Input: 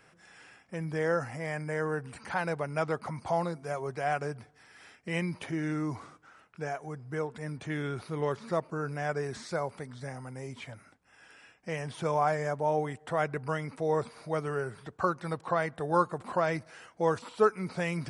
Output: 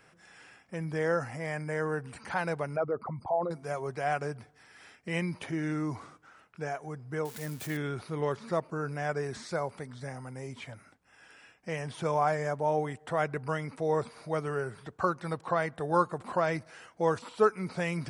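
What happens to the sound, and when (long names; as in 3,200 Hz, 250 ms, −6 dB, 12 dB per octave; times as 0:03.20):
0:02.76–0:03.51: spectral envelope exaggerated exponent 2
0:07.25–0:07.77: spike at every zero crossing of −33 dBFS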